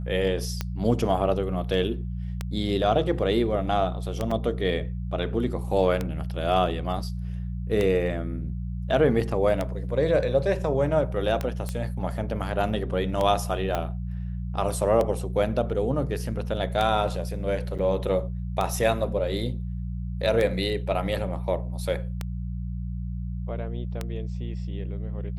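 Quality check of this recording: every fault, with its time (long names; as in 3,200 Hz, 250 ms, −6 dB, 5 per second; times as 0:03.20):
mains hum 60 Hz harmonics 3 −31 dBFS
scratch tick 33 1/3 rpm −13 dBFS
0:04.31: drop-out 3.8 ms
0:11.69: click −17 dBFS
0:13.75: click −13 dBFS
0:17.78–0:17.79: drop-out 7.1 ms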